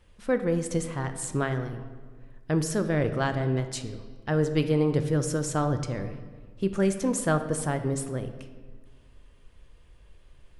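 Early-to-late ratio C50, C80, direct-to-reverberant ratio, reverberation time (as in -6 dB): 10.0 dB, 11.5 dB, 8.0 dB, 1.5 s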